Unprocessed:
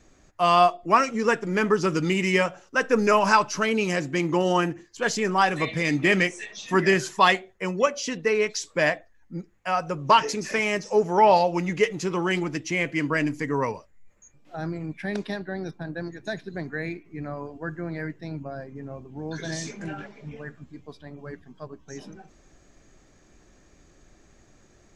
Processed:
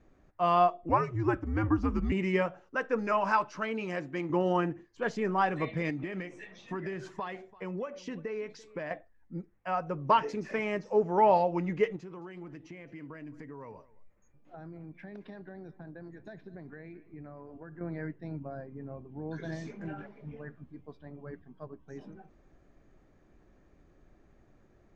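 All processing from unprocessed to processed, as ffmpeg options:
-filter_complex "[0:a]asettb=1/sr,asplit=3[s0][s1][s2];[s0]atrim=end=0.894[s3];[s1]atrim=start=0.89:end=2.12,asetpts=PTS-STARTPTS,afade=t=in:d=0.004:c=qsin,afade=t=out:st=1.226:d=0.004:c=qsin,equalizer=f=3800:t=o:w=2.4:g=-5,afreqshift=-110[s4];[s2]atrim=start=2.116[s5];[s3][s4]acrossfade=d=0.004:c1=hsin:c2=qsin[s6];[s6][s5]acrossfade=d=0.004:c1=qsin:c2=hsin,asettb=1/sr,asplit=3[s7][s8][s9];[s7]atrim=end=2.764[s10];[s8]atrim=start=2.76:end=4.3,asetpts=PTS-STARTPTS,afade=t=in:d=0.004:c=qsin,afade=t=out:st=1.536:d=0.004:c=qsin,lowshelf=f=330:g=-8,bandreject=f=420:w=14[s11];[s9]atrim=start=4.296[s12];[s10][s11]acrossfade=d=0.004:c1=hsin:c2=qsin[s13];[s13][s12]acrossfade=d=0.004:c1=qsin:c2=hsin,asettb=1/sr,asplit=3[s14][s15][s16];[s14]atrim=end=5.904[s17];[s15]atrim=start=5.9:end=8.91,asetpts=PTS-STARTPTS,afade=t=in:d=0.004:c=qsin,afade=t=out:st=3.006:d=0.004:c=qsin,acompressor=threshold=0.0447:ratio=6:attack=3.2:release=140:knee=1:detection=peak,aecho=1:1:339:0.0944,atrim=end_sample=132741[s18];[s16]atrim=start=8.906[s19];[s17][s18]acrossfade=d=0.004:c1=hsin:c2=qsin[s20];[s20][s19]acrossfade=d=0.004:c1=qsin:c2=hsin,asettb=1/sr,asplit=3[s21][s22][s23];[s21]atrim=end=11.964[s24];[s22]atrim=start=11.96:end=17.81,asetpts=PTS-STARTPTS,afade=t=in:d=0.004:c=qsin,afade=t=out:st=5.846:d=0.004:c=qsin,acompressor=threshold=0.0141:ratio=5:attack=3.2:release=140:knee=1:detection=peak,aecho=1:1:218:0.1,atrim=end_sample=257985[s25];[s23]atrim=start=17.806[s26];[s24][s25]acrossfade=d=0.004:c1=hsin:c2=qsin[s27];[s27][s26]acrossfade=d=0.004:c1=qsin:c2=hsin,lowpass=f=1500:p=1,aemphasis=mode=reproduction:type=cd,volume=0.562"

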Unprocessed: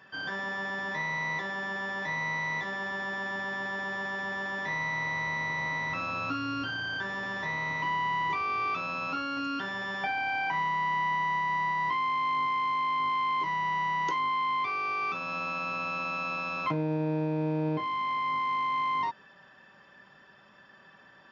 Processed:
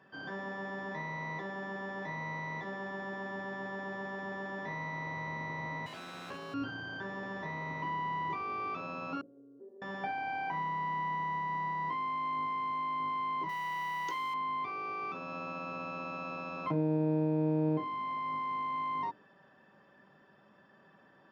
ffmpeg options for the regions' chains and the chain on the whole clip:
-filter_complex "[0:a]asettb=1/sr,asplit=3[s0][s1][s2];[s0]atrim=end=5.864[s3];[s1]atrim=start=5.86:end=6.54,asetpts=PTS-STARTPTS,afade=t=in:d=0.004:c=qsin,afade=t=out:st=0.676:d=0.004:c=qsin,bandreject=f=3700:w=5.1,aeval=exprs='abs(val(0))':c=same,highpass=130[s4];[s2]atrim=start=6.536[s5];[s3][s4]acrossfade=d=0.004:c1=hsin:c2=qsin[s6];[s6][s5]acrossfade=d=0.004:c1=qsin:c2=hsin,asettb=1/sr,asplit=3[s7][s8][s9];[s7]atrim=end=9.214[s10];[s8]atrim=start=9.21:end=9.82,asetpts=PTS-STARTPTS,afade=t=in:d=0.004:c=qsin,afade=t=out:st=0.606:d=0.004:c=qsin,asuperpass=centerf=410:order=4:qfactor=3.8,tremolo=f=150:d=0.519[s11];[s9]atrim=start=9.816[s12];[s10][s11]acrossfade=d=0.004:c1=hsin:c2=qsin[s13];[s13][s12]acrossfade=d=0.004:c1=qsin:c2=hsin,asettb=1/sr,asplit=3[s14][s15][s16];[s14]atrim=end=13.494[s17];[s15]atrim=start=13.49:end=14.34,asetpts=PTS-STARTPTS,afade=t=in:d=0.004:c=qsin,afade=t=out:st=0.846:d=0.004:c=qsin,tiltshelf=f=1200:g=-9.5,acrusher=bits=6:mix=0:aa=0.5[s18];[s16]atrim=start=14.336[s19];[s17][s18]acrossfade=d=0.004:c1=hsin:c2=qsin[s20];[s20][s19]acrossfade=d=0.004:c1=qsin:c2=hsin,highpass=f=280:p=1,tiltshelf=f=820:g=9.5,bandreject=f=60:t=h:w=6,bandreject=f=120:t=h:w=6,bandreject=f=180:t=h:w=6,bandreject=f=240:t=h:w=6,bandreject=f=300:t=h:w=6,bandreject=f=360:t=h:w=6,bandreject=f=420:t=h:w=6,bandreject=f=480:t=h:w=6,bandreject=f=540:t=h:w=6,bandreject=f=600:t=h:w=6,volume=0.668"

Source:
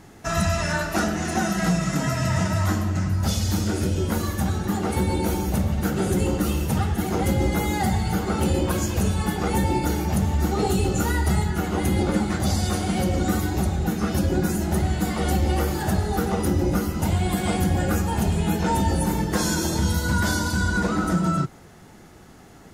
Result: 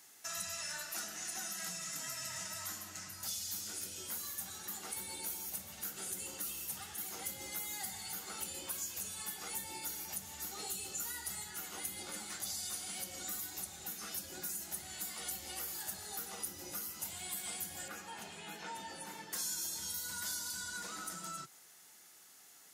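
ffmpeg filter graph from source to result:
-filter_complex "[0:a]asettb=1/sr,asplit=3[s0][s1][s2];[s0]atrim=end=17.884[s3];[s1]atrim=start=17.88:end=19.33,asetpts=PTS-STARTPTS,afade=t=in:d=0.004:c=qsin,afade=t=out:st=1.446:d=0.004:c=qsin,highpass=120,lowpass=2300,aemphasis=mode=production:type=50fm[s4];[s2]atrim=start=19.326[s5];[s3][s4]acrossfade=d=0.004:c1=hsin:c2=qsin[s6];[s6][s5]acrossfade=d=0.004:c1=qsin:c2=hsin,aderivative,acrossover=split=190[s7][s8];[s8]acompressor=threshold=0.00708:ratio=2[s9];[s7][s9]amix=inputs=2:normalize=0"

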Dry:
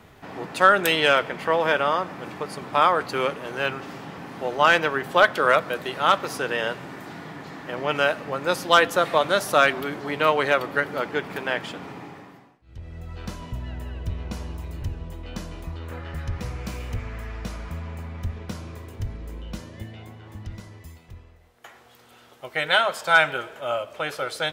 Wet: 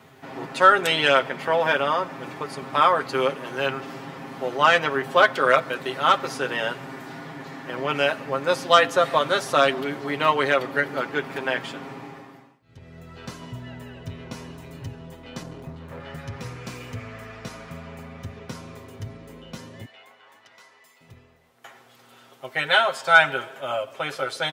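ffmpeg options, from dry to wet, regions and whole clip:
-filter_complex "[0:a]asettb=1/sr,asplit=3[s0][s1][s2];[s0]atrim=end=15.424[s3];[s1]atrim=start=15.42:end=16,asetpts=PTS-STARTPTS,afade=t=in:d=0.004:c=qsin,afade=t=out:st=0.576:d=0.004:c=qsin,tiltshelf=f=900:g=5.5,aeval=exprs='clip(val(0),-1,0.0168)':c=same[s4];[s2]atrim=start=15.996[s5];[s3][s4]acrossfade=d=0.004:c1=hsin:c2=qsin[s6];[s6][s5]acrossfade=d=0.004:c1=qsin:c2=hsin,asettb=1/sr,asplit=3[s7][s8][s9];[s7]atrim=end=19.854[s10];[s8]atrim=start=19.85:end=21.01,asetpts=PTS-STARTPTS,afade=t=in:d=0.004:c=qsin,afade=t=out:st=1.156:d=0.004:c=qsin,highpass=790,highshelf=f=6000:g=-7.5[s11];[s9]atrim=start=21.006[s12];[s10][s11]acrossfade=d=0.004:c1=hsin:c2=qsin[s13];[s13][s12]acrossfade=d=0.004:c1=qsin:c2=hsin,highpass=120,acrossover=split=9700[s14][s15];[s15]acompressor=threshold=0.00158:ratio=4:attack=1:release=60[s16];[s14][s16]amix=inputs=2:normalize=0,aecho=1:1:7.5:0.65,volume=0.891"

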